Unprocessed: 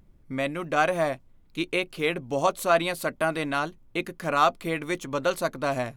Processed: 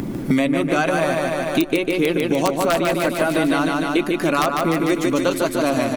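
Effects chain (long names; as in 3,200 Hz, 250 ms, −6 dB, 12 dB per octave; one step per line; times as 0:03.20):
spectral magnitudes quantised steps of 15 dB
parametric band 280 Hz +9 dB 1.2 octaves
in parallel at +1 dB: brickwall limiter −17 dBFS, peak gain reduction 10 dB
on the sum: wrap-around overflow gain 6.5 dB
on a send: repeating echo 149 ms, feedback 57%, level −4 dB
on the sum: multiband upward and downward compressor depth 100%
level −2.5 dB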